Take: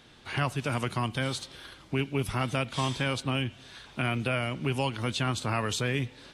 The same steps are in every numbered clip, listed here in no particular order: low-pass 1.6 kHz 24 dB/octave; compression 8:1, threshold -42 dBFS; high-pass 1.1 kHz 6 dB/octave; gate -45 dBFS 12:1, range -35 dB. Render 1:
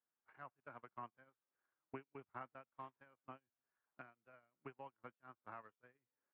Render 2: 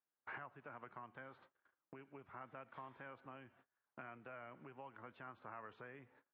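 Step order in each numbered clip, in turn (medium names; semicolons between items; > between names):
high-pass > compression > low-pass > gate; low-pass > gate > compression > high-pass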